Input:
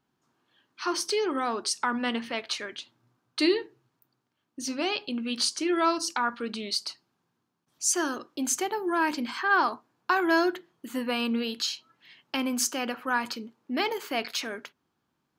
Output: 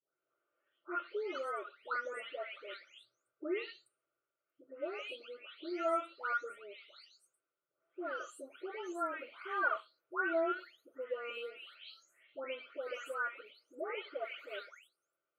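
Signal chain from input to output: spectral delay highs late, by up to 0.478 s; double band-pass 980 Hz, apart 1.2 oct; fixed phaser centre 1100 Hz, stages 8; gain +6.5 dB

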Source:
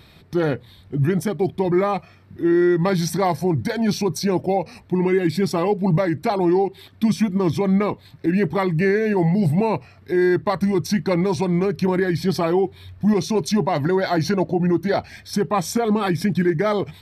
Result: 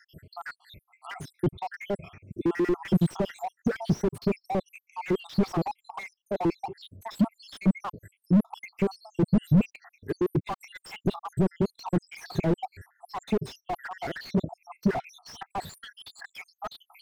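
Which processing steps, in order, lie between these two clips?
random spectral dropouts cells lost 82%; slew limiter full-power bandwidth 22 Hz; gain +3 dB

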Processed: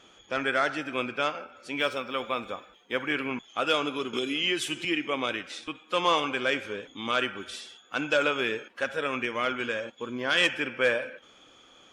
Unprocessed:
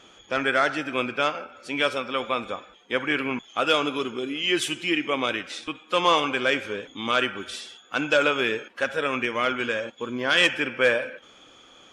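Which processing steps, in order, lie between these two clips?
1.8–3.12 median filter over 3 samples; 4.13–4.85 three-band squash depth 100%; gain -4 dB

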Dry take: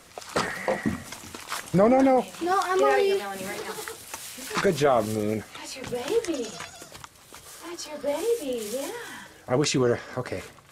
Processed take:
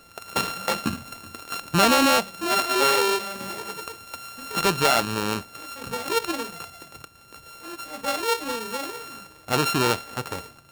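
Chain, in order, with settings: sample sorter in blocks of 32 samples; dynamic EQ 3700 Hz, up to +4 dB, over -35 dBFS, Q 1.1; ending taper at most 540 dB/s

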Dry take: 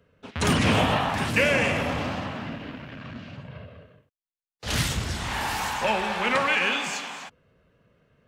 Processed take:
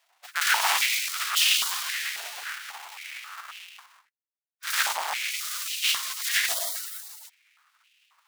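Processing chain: half-waves squared off; spectral gate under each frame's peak -20 dB weak; stepped high-pass 3.7 Hz 700–2700 Hz

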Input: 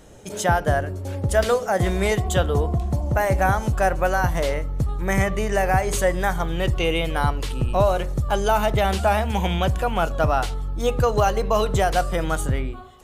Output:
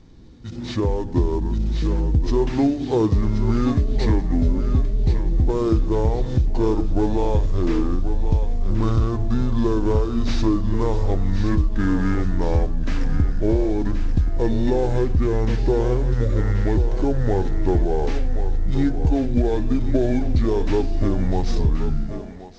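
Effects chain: CVSD 64 kbps; tilt shelf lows +6 dB, about 700 Hz; compressor, threshold -20 dBFS, peak gain reduction 10 dB; thinning echo 0.622 s, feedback 43%, high-pass 420 Hz, level -9 dB; AGC gain up to 9 dB; speed mistake 78 rpm record played at 45 rpm; gain -3.5 dB

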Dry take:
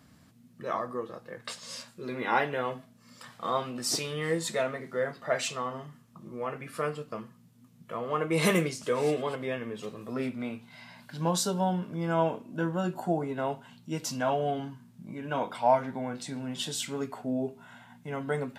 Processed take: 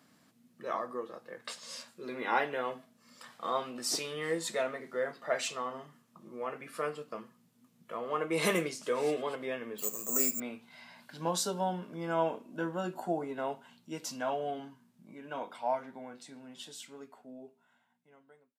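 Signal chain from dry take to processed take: ending faded out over 5.62 s; HPF 240 Hz 12 dB/oct; 9.78–10.4 careless resampling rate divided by 6×, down filtered, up zero stuff; gain -3 dB

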